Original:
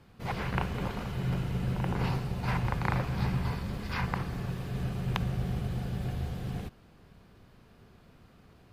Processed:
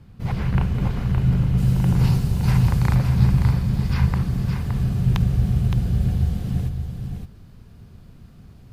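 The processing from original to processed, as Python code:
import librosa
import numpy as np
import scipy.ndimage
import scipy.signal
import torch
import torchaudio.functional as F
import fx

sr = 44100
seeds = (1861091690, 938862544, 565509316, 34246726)

y = fx.bass_treble(x, sr, bass_db=14, treble_db=fx.steps((0.0, 2.0), (1.57, 14.0), (2.94, 7.0)))
y = y + 10.0 ** (-6.5 / 20.0) * np.pad(y, (int(567 * sr / 1000.0), 0))[:len(y)]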